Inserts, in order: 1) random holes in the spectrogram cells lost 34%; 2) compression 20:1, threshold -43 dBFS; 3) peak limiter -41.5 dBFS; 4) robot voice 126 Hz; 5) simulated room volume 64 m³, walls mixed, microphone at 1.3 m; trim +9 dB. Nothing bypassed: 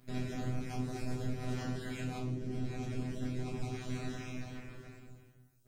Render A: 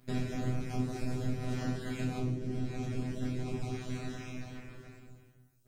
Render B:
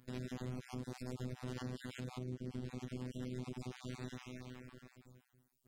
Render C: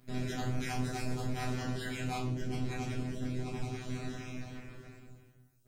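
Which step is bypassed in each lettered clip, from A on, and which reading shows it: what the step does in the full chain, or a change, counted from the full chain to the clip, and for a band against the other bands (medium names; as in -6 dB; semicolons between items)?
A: 3, 250 Hz band +1.5 dB; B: 5, echo-to-direct 5.5 dB to none; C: 2, mean gain reduction 9.5 dB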